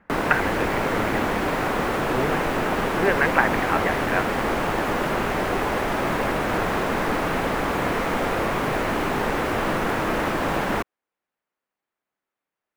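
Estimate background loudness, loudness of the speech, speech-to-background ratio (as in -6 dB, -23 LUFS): -24.0 LUFS, -26.0 LUFS, -2.0 dB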